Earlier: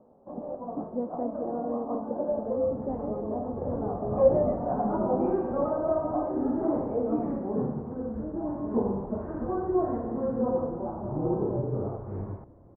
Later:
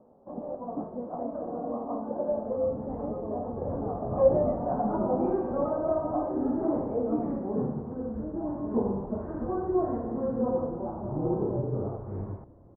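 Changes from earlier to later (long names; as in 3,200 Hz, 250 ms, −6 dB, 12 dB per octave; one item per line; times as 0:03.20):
speech −6.0 dB
second sound: add high-frequency loss of the air 280 metres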